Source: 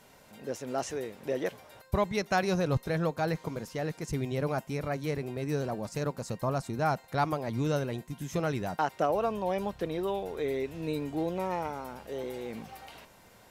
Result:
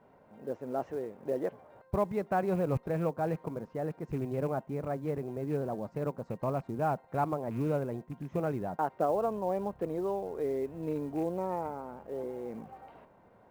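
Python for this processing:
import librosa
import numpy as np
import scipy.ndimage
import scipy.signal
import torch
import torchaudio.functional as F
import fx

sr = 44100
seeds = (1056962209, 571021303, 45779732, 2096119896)

y = fx.rattle_buzz(x, sr, strikes_db=-33.0, level_db=-31.0)
y = scipy.signal.sosfilt(scipy.signal.butter(2, 1000.0, 'lowpass', fs=sr, output='sos'), y)
y = fx.low_shelf(y, sr, hz=92.0, db=-10.0)
y = fx.quant_float(y, sr, bits=4)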